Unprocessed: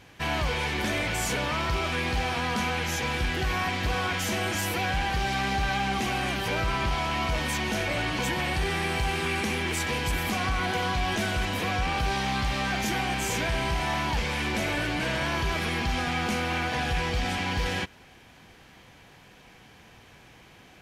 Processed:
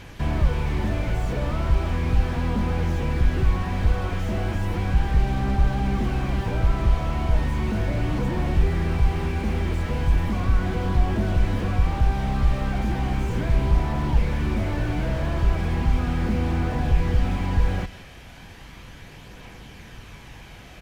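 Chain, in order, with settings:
sub-octave generator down 2 octaves, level −5 dB
low-shelf EQ 110 Hz +7 dB
notch filter 760 Hz, Q 23
in parallel at +1 dB: downward compressor, threshold −32 dBFS, peak gain reduction 14 dB
on the sum: phase shifter 0.36 Hz, delay 1.7 ms, feedback 23%
on a send: single-tap delay 169 ms −20.5 dB
on the sum: slew-rate limiting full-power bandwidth 29 Hz

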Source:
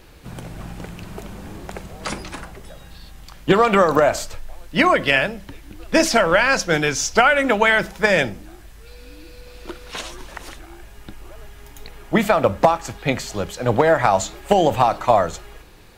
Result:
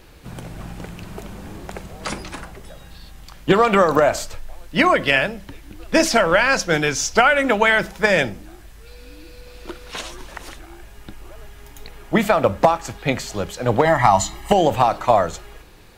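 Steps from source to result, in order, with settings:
0:13.85–0:14.52: comb filter 1 ms, depth 86%

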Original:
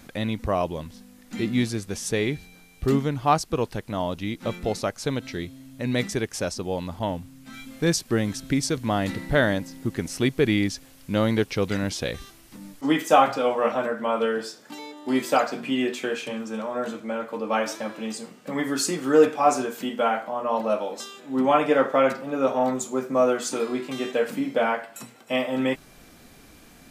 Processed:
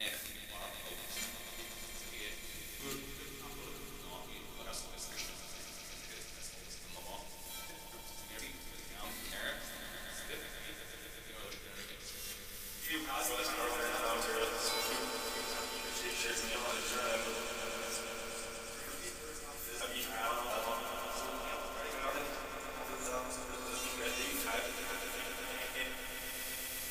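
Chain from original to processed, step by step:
reversed piece by piece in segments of 233 ms
first difference
reversed playback
downward compressor 16 to 1, threshold −47 dBFS, peak gain reduction 24.5 dB
reversed playback
volume swells 593 ms
background noise brown −72 dBFS
echo that builds up and dies away 121 ms, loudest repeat 5, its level −10.5 dB
rectangular room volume 87 cubic metres, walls mixed, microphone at 0.85 metres
harmonic generator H 7 −35 dB, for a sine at −30 dBFS
level +10.5 dB

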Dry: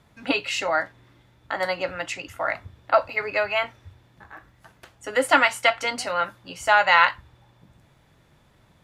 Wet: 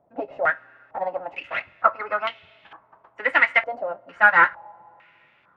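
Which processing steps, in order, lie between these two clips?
gain on one half-wave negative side −12 dB
high-pass filter 390 Hz 6 dB per octave
coupled-rooms reverb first 0.32 s, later 4.5 s, from −19 dB, DRR 15.5 dB
phase-vocoder stretch with locked phases 0.63×
low-pass on a step sequencer 2.2 Hz 650–3,200 Hz

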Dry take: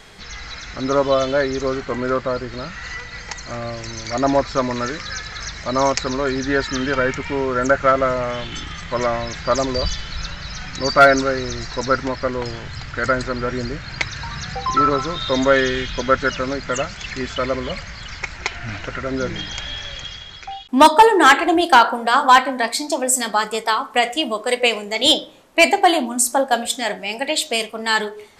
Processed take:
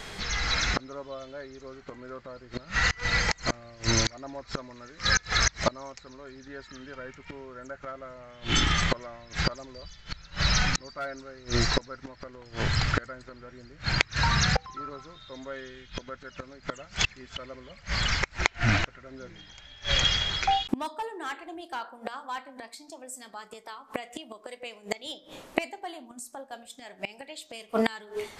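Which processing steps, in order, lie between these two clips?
automatic gain control gain up to 6 dB
gate with flip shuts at −14 dBFS, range −29 dB
level +3 dB

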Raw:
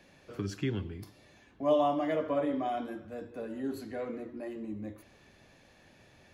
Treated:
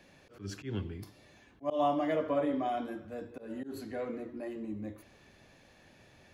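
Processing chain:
volume swells 134 ms

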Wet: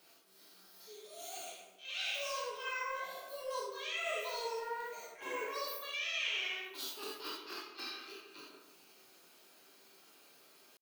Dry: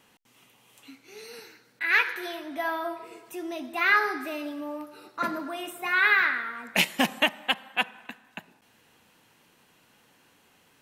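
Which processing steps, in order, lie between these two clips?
high-pass filter 120 Hz 12 dB per octave
high-shelf EQ 6,700 Hz +10.5 dB
notch filter 1,100 Hz, Q 21
hum removal 274.6 Hz, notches 26
reversed playback
downward compressor 6 to 1, threshold −33 dBFS, peak gain reduction 16 dB
reversed playback
transient designer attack −12 dB, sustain +1 dB
pitch shifter +8 semitones
flanger 1.2 Hz, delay 5.2 ms, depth 8.5 ms, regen +45%
on a send: tape delay 142 ms, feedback 52%, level −6 dB, low-pass 1,000 Hz
on the sum: reverb whose tail is shaped and stops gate 110 ms flat, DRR −4 dB
level −3 dB

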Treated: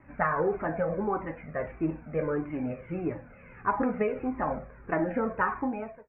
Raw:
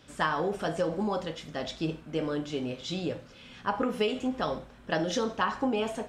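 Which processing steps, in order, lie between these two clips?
fade-out on the ending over 0.66 s
Butterworth low-pass 2,400 Hz 96 dB per octave
flanger whose copies keep moving one way falling 1.6 Hz
level +6.5 dB

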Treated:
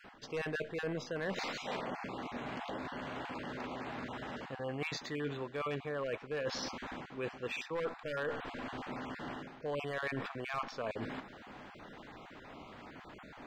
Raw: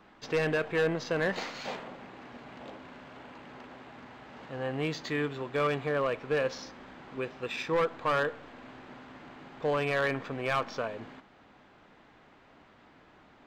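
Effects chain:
time-frequency cells dropped at random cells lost 20%
reversed playback
downward compressor 6 to 1, threshold −44 dBFS, peak gain reduction 17.5 dB
reversed playback
level +7.5 dB

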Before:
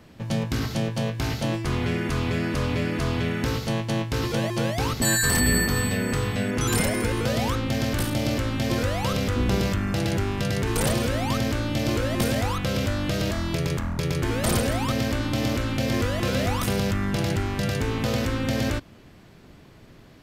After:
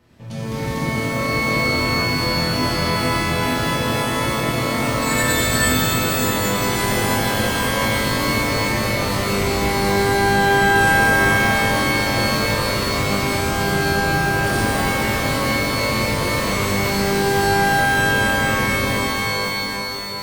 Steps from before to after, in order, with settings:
reverb with rising layers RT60 3.7 s, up +12 semitones, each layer −2 dB, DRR −9 dB
level −9 dB

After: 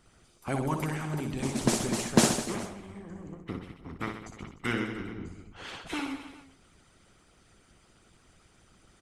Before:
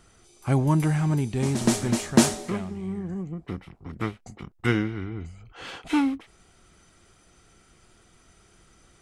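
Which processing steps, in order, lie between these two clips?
reverse bouncing-ball delay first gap 60 ms, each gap 1.15×, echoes 5
harmonic and percussive parts rebalanced harmonic −15 dB

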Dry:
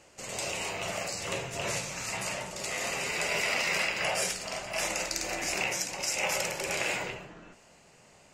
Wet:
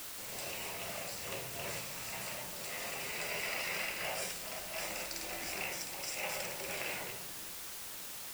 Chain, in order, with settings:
notch filter 6,600 Hz, Q 5.7
bit-depth reduction 6 bits, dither triangular
level −9 dB

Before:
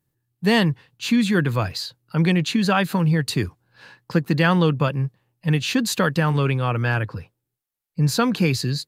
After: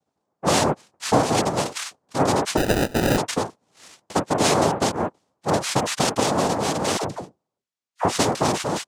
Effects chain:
cochlear-implant simulation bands 2
0:02.57–0:03.18: sample-rate reduction 1,100 Hz, jitter 0%
0:06.97–0:08.05: all-pass dispersion lows, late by 62 ms, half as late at 630 Hz
level −1.5 dB

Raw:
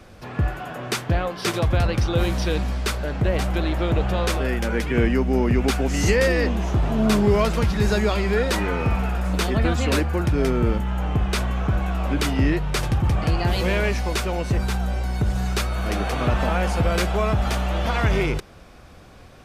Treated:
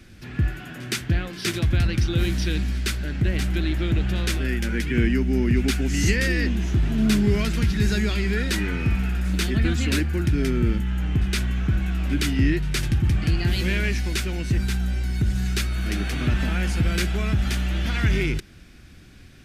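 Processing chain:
flat-topped bell 740 Hz −14 dB
backwards echo 116 ms −23.5 dB

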